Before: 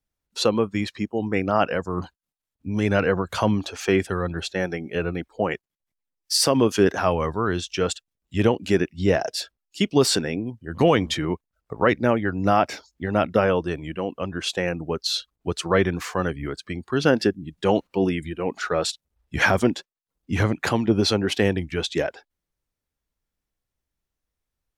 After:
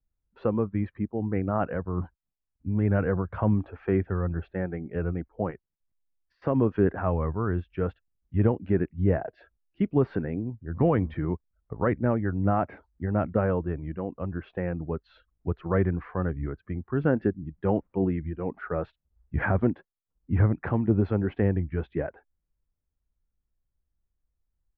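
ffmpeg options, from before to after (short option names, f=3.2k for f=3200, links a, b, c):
-filter_complex "[0:a]asettb=1/sr,asplit=3[a][b][c];[a]atrim=end=5.504[d];[b]atrim=start=5.5:end=6.42,asetpts=PTS-STARTPTS,afade=t=in:d=0.004:c=qsin,afade=t=out:st=0.916:d=0.004:c=qsin,acompressor=threshold=-29dB:ratio=6:attack=3.2:release=140:knee=1:detection=peak[e];[c]atrim=start=6.416[f];[d][e]acrossfade=d=0.004:c1=hsin:c2=qsin[g];[g][f]acrossfade=d=0.004:c1=qsin:c2=hsin,lowpass=f=1.9k:w=0.5412,lowpass=f=1.9k:w=1.3066,aemphasis=mode=reproduction:type=bsi,volume=-8dB"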